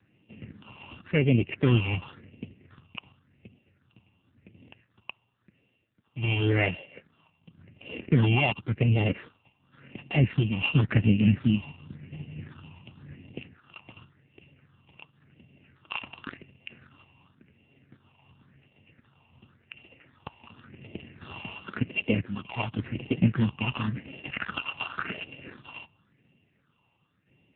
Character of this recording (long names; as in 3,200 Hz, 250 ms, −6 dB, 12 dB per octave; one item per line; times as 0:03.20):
a buzz of ramps at a fixed pitch in blocks of 16 samples
tremolo saw down 0.66 Hz, depth 45%
phaser sweep stages 6, 0.92 Hz, lowest notch 430–1,300 Hz
AMR narrowband